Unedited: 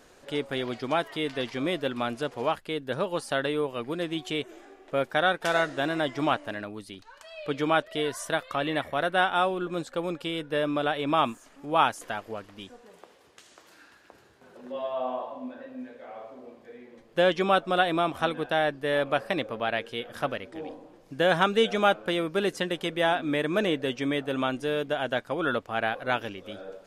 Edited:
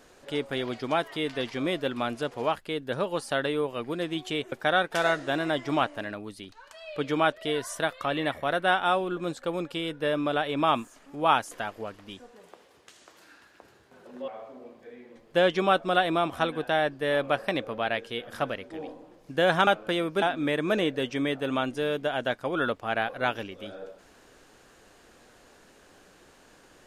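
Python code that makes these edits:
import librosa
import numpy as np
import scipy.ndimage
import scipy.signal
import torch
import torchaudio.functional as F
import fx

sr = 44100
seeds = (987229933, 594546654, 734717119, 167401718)

y = fx.edit(x, sr, fx.cut(start_s=4.52, length_s=0.5),
    fx.cut(start_s=14.78, length_s=1.32),
    fx.cut(start_s=21.49, length_s=0.37),
    fx.cut(start_s=22.41, length_s=0.67), tone=tone)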